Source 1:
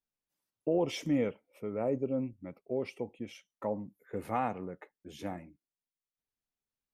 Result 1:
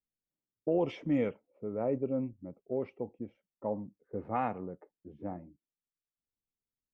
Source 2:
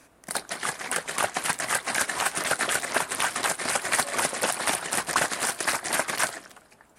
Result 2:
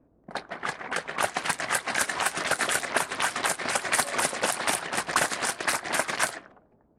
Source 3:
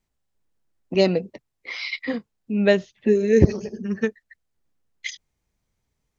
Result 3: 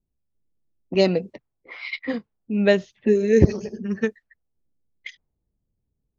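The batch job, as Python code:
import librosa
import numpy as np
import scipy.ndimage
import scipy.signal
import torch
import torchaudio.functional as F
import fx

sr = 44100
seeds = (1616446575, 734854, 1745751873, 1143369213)

y = fx.env_lowpass(x, sr, base_hz=390.0, full_db=-21.5)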